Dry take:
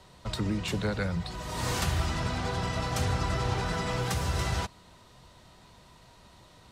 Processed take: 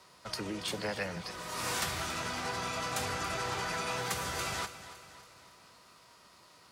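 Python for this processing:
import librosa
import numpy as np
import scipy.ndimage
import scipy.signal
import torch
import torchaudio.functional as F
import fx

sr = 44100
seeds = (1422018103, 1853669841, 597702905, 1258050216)

y = fx.highpass(x, sr, hz=470.0, slope=6)
y = fx.formant_shift(y, sr, semitones=3)
y = fx.echo_feedback(y, sr, ms=280, feedback_pct=52, wet_db=-14)
y = y * 10.0 ** (-1.0 / 20.0)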